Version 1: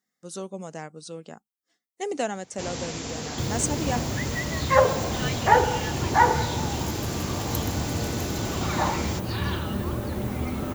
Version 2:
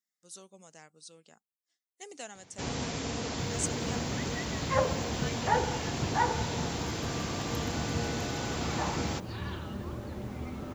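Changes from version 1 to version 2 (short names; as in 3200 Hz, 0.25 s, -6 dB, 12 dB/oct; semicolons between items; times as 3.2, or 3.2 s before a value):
speech: add pre-emphasis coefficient 0.9; second sound -9.5 dB; master: add high shelf 7900 Hz -12 dB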